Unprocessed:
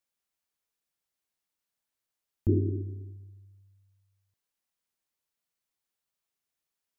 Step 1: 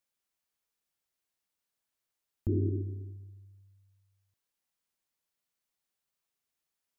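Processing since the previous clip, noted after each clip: limiter -21 dBFS, peak gain reduction 7 dB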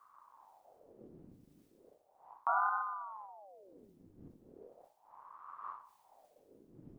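wind noise 120 Hz -55 dBFS; reverse; upward compressor, threshold -51 dBFS; reverse; ring modulator with a swept carrier 670 Hz, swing 70%, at 0.36 Hz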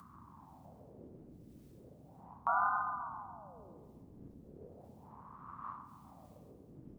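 upward compressor, threshold -54 dBFS; band noise 57–270 Hz -60 dBFS; darkening echo 0.135 s, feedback 75%, low-pass 1200 Hz, level -8.5 dB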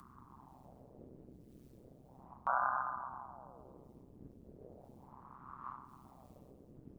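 AM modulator 130 Hz, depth 75%; gain +2 dB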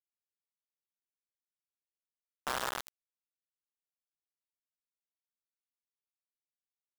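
delta modulation 64 kbps, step -40 dBFS; ring modulator 220 Hz; bit-crush 5-bit

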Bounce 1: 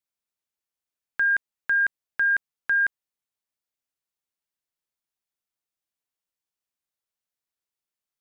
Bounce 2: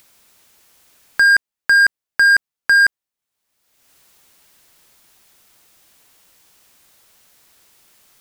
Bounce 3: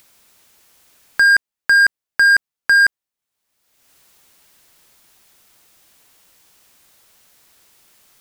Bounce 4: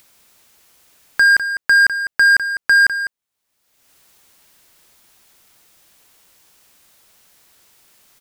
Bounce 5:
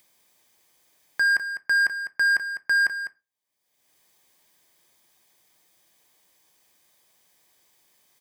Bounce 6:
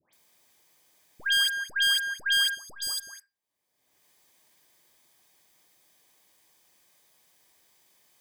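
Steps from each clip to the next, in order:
in parallel at +2.5 dB: level quantiser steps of 12 dB; on the sum: sample leveller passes 2; upward compressor, threshold -31 dBFS; gain +2.5 dB
nothing audible
echo 0.202 s -11 dB
notch comb 1400 Hz; on a send at -12.5 dB: reverb RT60 0.30 s, pre-delay 4 ms; on the sum: gain -9 dB
self-modulated delay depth 0.15 ms; spectral gain 2.48–3.07, 1300–3300 Hz -19 dB; dispersion highs, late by 0.133 s, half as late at 1600 Hz

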